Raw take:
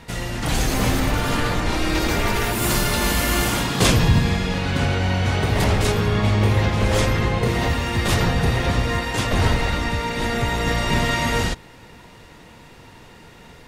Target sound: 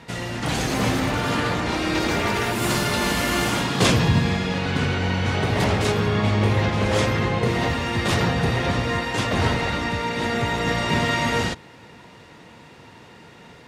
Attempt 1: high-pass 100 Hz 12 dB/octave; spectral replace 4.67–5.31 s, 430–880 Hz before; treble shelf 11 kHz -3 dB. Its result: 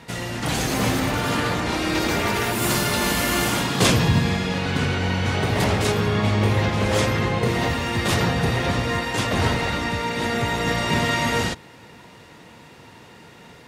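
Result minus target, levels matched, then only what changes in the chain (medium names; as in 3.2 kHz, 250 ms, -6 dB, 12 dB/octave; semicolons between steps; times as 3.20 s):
8 kHz band +3.0 dB
change: treble shelf 11 kHz -14.5 dB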